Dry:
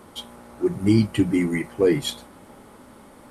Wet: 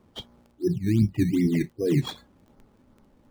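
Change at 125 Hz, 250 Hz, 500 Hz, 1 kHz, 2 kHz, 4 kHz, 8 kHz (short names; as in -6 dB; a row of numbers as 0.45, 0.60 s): +1.0, -3.0, -6.5, -8.5, -8.0, -7.0, -7.5 dB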